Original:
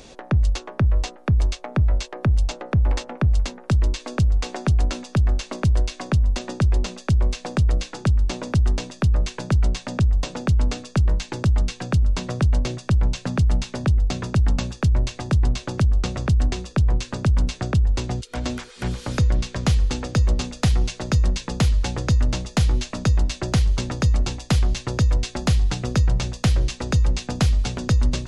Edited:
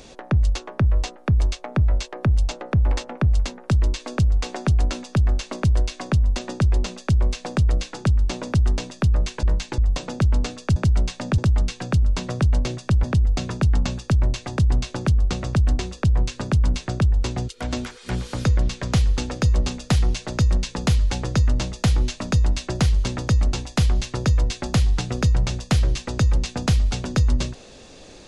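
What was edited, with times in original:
9.43–10.05 s: swap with 11.03–11.38 s
13.04–13.77 s: delete

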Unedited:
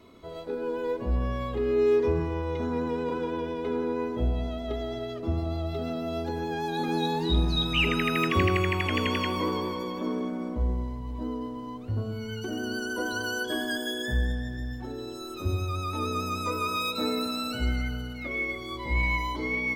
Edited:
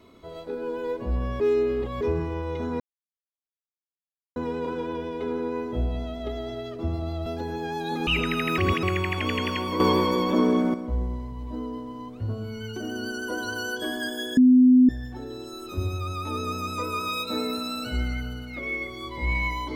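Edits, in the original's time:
1.40–2.01 s: reverse
2.80 s: insert silence 1.56 s
5.70–6.14 s: delete
6.95–7.75 s: delete
8.26–8.51 s: reverse
9.48–10.42 s: gain +9.5 dB
14.05–14.57 s: bleep 253 Hz -11.5 dBFS

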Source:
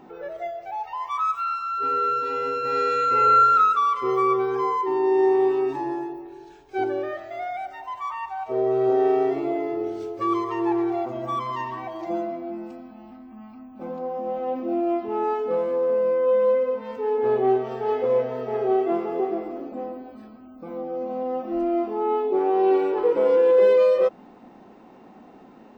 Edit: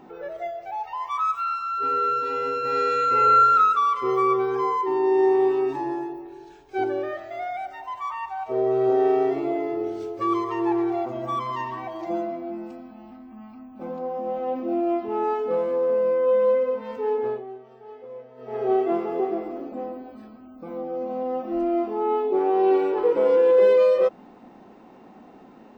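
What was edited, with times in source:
17.11–18.70 s: dip -18.5 dB, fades 0.34 s

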